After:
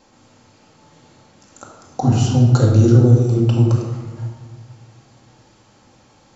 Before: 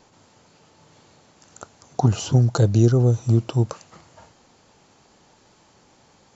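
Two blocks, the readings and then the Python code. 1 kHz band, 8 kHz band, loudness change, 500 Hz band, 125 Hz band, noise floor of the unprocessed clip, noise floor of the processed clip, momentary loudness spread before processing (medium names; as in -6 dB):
+3.5 dB, no reading, +5.0 dB, +4.0 dB, +5.5 dB, -57 dBFS, -53 dBFS, 8 LU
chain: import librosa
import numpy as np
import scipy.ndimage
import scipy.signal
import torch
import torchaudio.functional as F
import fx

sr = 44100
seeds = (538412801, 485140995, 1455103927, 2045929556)

y = fx.room_shoebox(x, sr, seeds[0], volume_m3=1100.0, walls='mixed', distance_m=2.2)
y = y * librosa.db_to_amplitude(-1.0)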